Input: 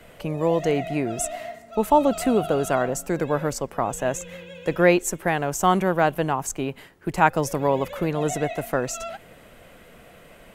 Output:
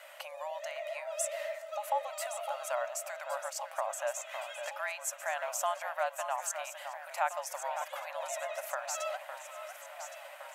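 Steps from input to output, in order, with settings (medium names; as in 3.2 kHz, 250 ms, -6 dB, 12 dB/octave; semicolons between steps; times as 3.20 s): frequency shift -46 Hz; compression 2.5:1, threshold -33 dBFS, peak gain reduction 14.5 dB; brick-wall FIR high-pass 540 Hz; on a send: echo whose repeats swap between lows and highs 558 ms, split 2.3 kHz, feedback 78%, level -8.5 dB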